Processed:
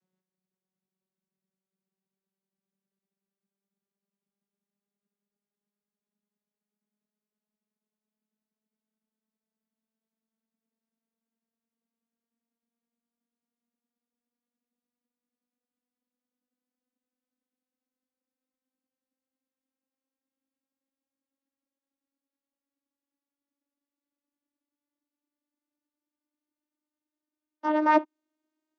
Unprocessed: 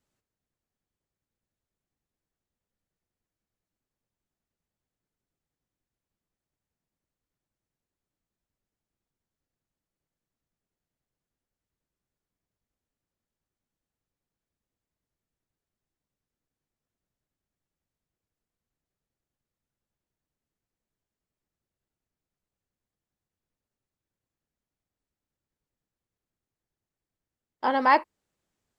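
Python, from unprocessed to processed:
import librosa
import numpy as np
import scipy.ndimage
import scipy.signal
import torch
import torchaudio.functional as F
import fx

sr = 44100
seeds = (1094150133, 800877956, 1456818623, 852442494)

y = fx.vocoder_glide(x, sr, note=54, semitones=9)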